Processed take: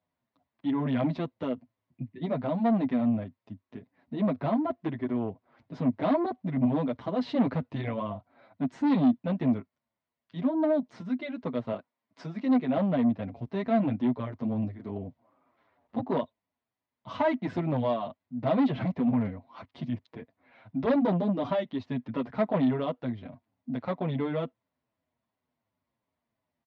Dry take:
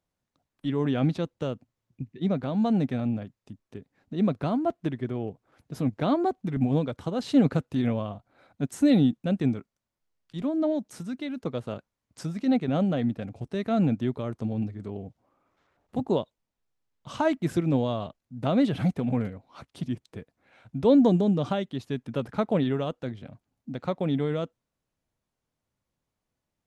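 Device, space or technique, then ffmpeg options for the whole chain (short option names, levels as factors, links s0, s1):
barber-pole flanger into a guitar amplifier: -filter_complex "[0:a]asettb=1/sr,asplit=3[s0][s1][s2];[s0]atrim=end=11.724[s3];[s1]atrim=start=11.72:end=12.77,asetpts=PTS-STARTPTS,afade=t=in:d=0.004:c=qsin,afade=t=out:st=1.046:d=0.004:c=qsin,highpass=200[s4];[s2]atrim=start=12.766[s5];[s3][s4]acrossfade=d=0.004:c1=hsin:c2=qsin[s6];[s6][s5]acrossfade=d=0.004:c1=qsin:c2=hsin,asplit=2[s7][s8];[s8]adelay=7.5,afreqshift=-2.8[s9];[s7][s9]amix=inputs=2:normalize=1,asoftclip=type=tanh:threshold=0.0596,highpass=79,equalizer=f=97:t=q:w=4:g=3,equalizer=f=250:t=q:w=4:g=8,equalizer=f=650:t=q:w=4:g=8,equalizer=f=1000:t=q:w=4:g=8,equalizer=f=2000:t=q:w=4:g=6,lowpass=f=4500:w=0.5412,lowpass=f=4500:w=1.3066"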